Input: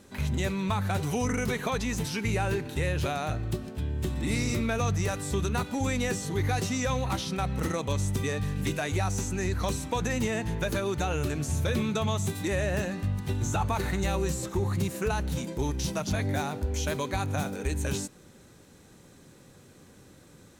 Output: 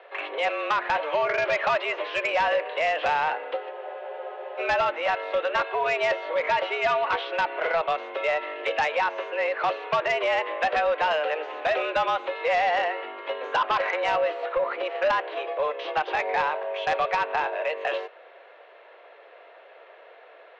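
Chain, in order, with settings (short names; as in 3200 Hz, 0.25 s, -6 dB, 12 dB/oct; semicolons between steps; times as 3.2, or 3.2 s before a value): mistuned SSB +160 Hz 350–2900 Hz; sine folder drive 6 dB, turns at -17.5 dBFS; spectral freeze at 3.73, 0.85 s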